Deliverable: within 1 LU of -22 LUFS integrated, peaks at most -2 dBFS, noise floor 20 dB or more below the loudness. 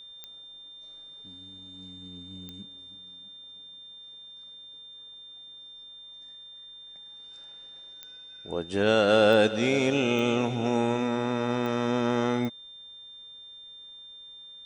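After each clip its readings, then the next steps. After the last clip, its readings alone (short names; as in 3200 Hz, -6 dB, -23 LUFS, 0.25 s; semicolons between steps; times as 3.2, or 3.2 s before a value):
clicks 7; steady tone 3600 Hz; tone level -44 dBFS; loudness -25.0 LUFS; peak -9.0 dBFS; loudness target -22.0 LUFS
-> de-click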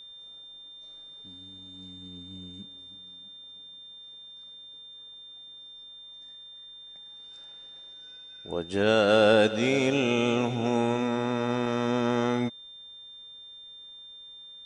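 clicks 0; steady tone 3600 Hz; tone level -44 dBFS
-> notch 3600 Hz, Q 30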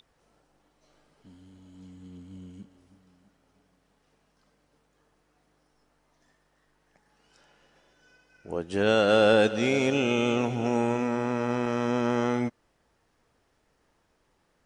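steady tone none; loudness -25.5 LUFS; peak -9.5 dBFS; loudness target -22.0 LUFS
-> gain +3.5 dB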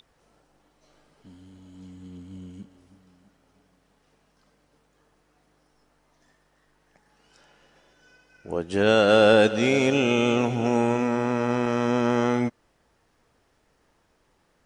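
loudness -22.0 LUFS; peak -6.0 dBFS; noise floor -67 dBFS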